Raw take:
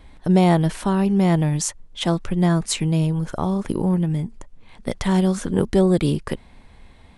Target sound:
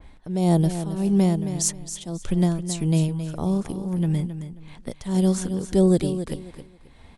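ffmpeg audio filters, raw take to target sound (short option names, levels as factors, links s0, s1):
-filter_complex "[0:a]acrossover=split=700|4500[s0][s1][s2];[s1]acompressor=threshold=0.0112:ratio=6[s3];[s2]volume=5.01,asoftclip=hard,volume=0.2[s4];[s0][s3][s4]amix=inputs=3:normalize=0,tremolo=f=1.7:d=0.79,aecho=1:1:268|536|804:0.299|0.0716|0.0172,adynamicequalizer=threshold=0.00447:dfrequency=2600:dqfactor=0.7:tfrequency=2600:tqfactor=0.7:attack=5:release=100:ratio=0.375:range=2.5:mode=boostabove:tftype=highshelf"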